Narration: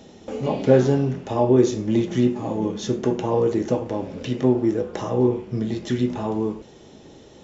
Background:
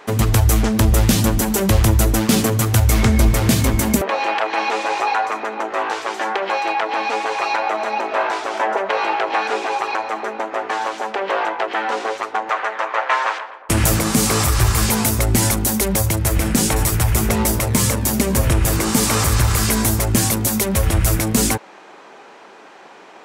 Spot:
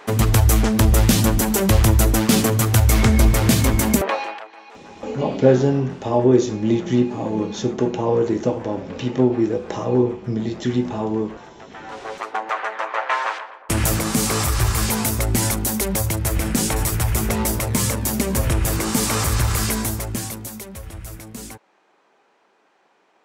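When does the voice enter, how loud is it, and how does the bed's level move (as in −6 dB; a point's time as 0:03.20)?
4.75 s, +1.5 dB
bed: 0:04.11 −0.5 dB
0:04.55 −23 dB
0:11.56 −23 dB
0:12.27 −3.5 dB
0:19.64 −3.5 dB
0:20.83 −18.5 dB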